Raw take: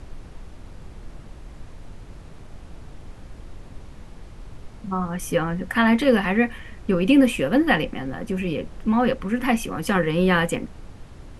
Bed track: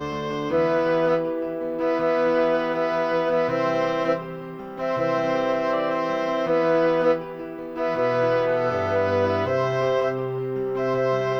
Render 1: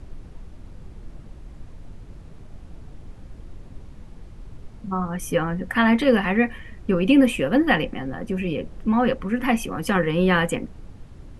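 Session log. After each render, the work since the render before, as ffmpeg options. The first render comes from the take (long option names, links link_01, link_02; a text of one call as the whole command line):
ffmpeg -i in.wav -af "afftdn=noise_reduction=6:noise_floor=-43" out.wav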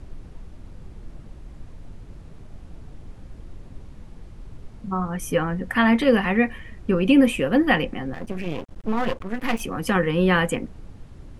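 ffmpeg -i in.wav -filter_complex "[0:a]asettb=1/sr,asplit=3[link_01][link_02][link_03];[link_01]atrim=end=8.144[link_04];[link_02]atrim=start=8.14:end=9.61,asetpts=PTS-STARTPTS,afade=type=in:duration=0.004:curve=qsin,afade=type=out:start_time=1.466:duration=0.004:curve=qsin,aeval=exprs='max(val(0),0)':channel_layout=same[link_05];[link_03]atrim=start=9.606[link_06];[link_04][link_05]acrossfade=duration=0.004:curve1=hsin:curve2=qsin[link_07];[link_07][link_06]acrossfade=duration=0.004:curve1=qsin:curve2=hsin" out.wav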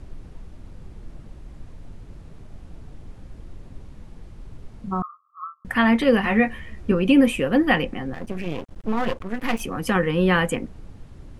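ffmpeg -i in.wav -filter_complex "[0:a]asettb=1/sr,asplit=3[link_01][link_02][link_03];[link_01]atrim=end=5.024[link_04];[link_02]atrim=start=5.02:end=5.65,asetpts=PTS-STARTPTS,afade=type=in:duration=0.004:curve=qsin,afade=type=out:start_time=0.626:duration=0.004:curve=qsin,asuperpass=centerf=1200:order=20:qfactor=4.5[link_05];[link_03]atrim=start=5.646[link_06];[link_04][link_05]acrossfade=duration=0.004:curve1=hsin:curve2=qsin[link_07];[link_07][link_06]acrossfade=duration=0.004:curve1=qsin:curve2=hsin,asettb=1/sr,asplit=3[link_08][link_09][link_10];[link_08]atrim=end=6.224[link_11];[link_09]atrim=start=6.22:end=6.92,asetpts=PTS-STARTPTS,afade=type=in:duration=0.004:curve=qsin,afade=type=out:start_time=0.696:duration=0.004:curve=qsin,asplit=2[link_12][link_13];[link_13]adelay=14,volume=-3.5dB[link_14];[link_12][link_14]amix=inputs=2:normalize=0,atrim=end_sample=30870[link_15];[link_10]atrim=start=6.916[link_16];[link_11][link_15]acrossfade=duration=0.004:curve1=hsin:curve2=qsin[link_17];[link_17][link_16]acrossfade=duration=0.004:curve1=qsin:curve2=hsin" out.wav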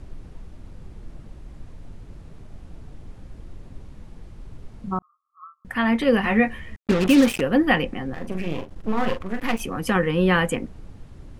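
ffmpeg -i in.wav -filter_complex "[0:a]asettb=1/sr,asplit=3[link_01][link_02][link_03];[link_01]atrim=end=6.764[link_04];[link_02]atrim=start=6.76:end=7.41,asetpts=PTS-STARTPTS,afade=type=in:duration=0.004:curve=qsin,afade=type=out:start_time=0.646:duration=0.004:curve=qsin,acrusher=bits=3:mix=0:aa=0.5[link_05];[link_03]atrim=start=7.406[link_06];[link_04][link_05]acrossfade=duration=0.004:curve1=hsin:curve2=qsin[link_07];[link_07][link_06]acrossfade=duration=0.004:curve1=qsin:curve2=hsin,asettb=1/sr,asplit=3[link_08][link_09][link_10];[link_08]atrim=end=8.124[link_11];[link_09]atrim=start=8.12:end=9.4,asetpts=PTS-STARTPTS,afade=type=in:duration=0.004:curve=qsin,afade=type=out:start_time=1.276:duration=0.004:curve=qsin,asplit=2[link_12][link_13];[link_13]adelay=43,volume=-8dB[link_14];[link_12][link_14]amix=inputs=2:normalize=0,atrim=end_sample=56448[link_15];[link_10]atrim=start=9.396[link_16];[link_11][link_15]acrossfade=duration=0.004:curve1=hsin:curve2=qsin[link_17];[link_17][link_16]acrossfade=duration=0.004:curve1=qsin:curve2=hsin,asplit=2[link_18][link_19];[link_18]atrim=end=4.99,asetpts=PTS-STARTPTS,afade=type=out:start_time=4.986:duration=0.004:curve=hsin[link_20];[link_19]atrim=start=4.99,asetpts=PTS-STARTPTS,afade=type=in:duration=1.26[link_21];[link_20][link_21]concat=n=2:v=0:a=1" out.wav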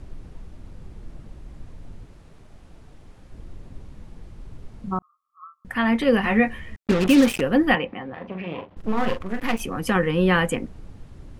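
ffmpeg -i in.wav -filter_complex "[0:a]asettb=1/sr,asplit=3[link_01][link_02][link_03];[link_01]atrim=end=2.064[link_04];[link_02]atrim=start=2.06:end=3.32,asetpts=PTS-STARTPTS,afade=type=in:duration=0.004:curve=qsin,afade=type=out:start_time=1.256:duration=0.004:curve=qsin,lowshelf=frequency=360:gain=-7.5[link_05];[link_03]atrim=start=3.316[link_06];[link_04][link_05]acrossfade=duration=0.004:curve1=hsin:curve2=qsin[link_07];[link_07][link_06]acrossfade=duration=0.004:curve1=qsin:curve2=hsin,asettb=1/sr,asplit=3[link_08][link_09][link_10];[link_08]atrim=end=7.754[link_11];[link_09]atrim=start=7.75:end=8.77,asetpts=PTS-STARTPTS,afade=type=in:duration=0.004:curve=qsin,afade=type=out:start_time=1.016:duration=0.004:curve=qsin,highpass=130,equalizer=frequency=140:width_type=q:width=4:gain=-7,equalizer=frequency=250:width_type=q:width=4:gain=-6,equalizer=frequency=360:width_type=q:width=4:gain=-5,equalizer=frequency=980:width_type=q:width=4:gain=4,equalizer=frequency=1600:width_type=q:width=4:gain=-3,lowpass=frequency=3300:width=0.5412,lowpass=frequency=3300:width=1.3066[link_12];[link_10]atrim=start=8.766[link_13];[link_11][link_12]acrossfade=duration=0.004:curve1=hsin:curve2=qsin[link_14];[link_14][link_13]acrossfade=duration=0.004:curve1=qsin:curve2=hsin" out.wav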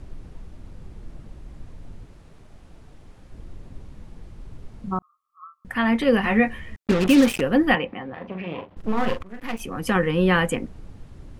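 ffmpeg -i in.wav -filter_complex "[0:a]asplit=2[link_01][link_02];[link_01]atrim=end=9.23,asetpts=PTS-STARTPTS,afade=type=out:start_time=9.226:duration=0.004:curve=hsin:silence=0.177828[link_03];[link_02]atrim=start=9.23,asetpts=PTS-STARTPTS,afade=type=in:duration=0.7:silence=0.177828[link_04];[link_03][link_04]concat=n=2:v=0:a=1" out.wav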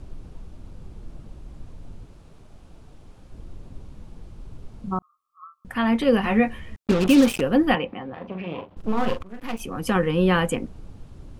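ffmpeg -i in.wav -af "equalizer=frequency=1900:width=2.8:gain=-5.5" out.wav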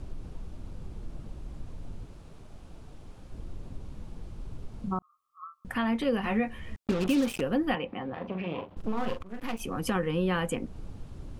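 ffmpeg -i in.wav -af "acompressor=threshold=-31dB:ratio=2" out.wav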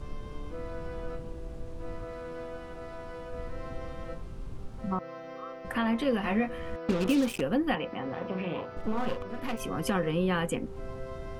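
ffmpeg -i in.wav -i bed.wav -filter_complex "[1:a]volume=-20dB[link_01];[0:a][link_01]amix=inputs=2:normalize=0" out.wav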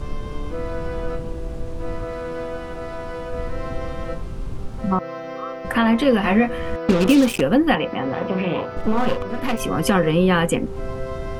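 ffmpeg -i in.wav -af "volume=11dB" out.wav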